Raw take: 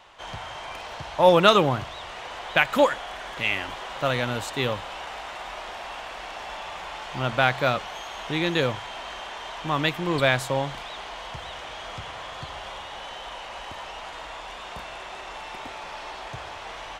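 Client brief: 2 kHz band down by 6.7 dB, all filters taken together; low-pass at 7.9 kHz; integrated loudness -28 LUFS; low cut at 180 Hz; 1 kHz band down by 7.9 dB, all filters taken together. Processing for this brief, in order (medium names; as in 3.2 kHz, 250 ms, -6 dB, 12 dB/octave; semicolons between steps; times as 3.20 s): high-pass 180 Hz; low-pass 7.9 kHz; peaking EQ 1 kHz -9 dB; peaking EQ 2 kHz -6 dB; trim +2 dB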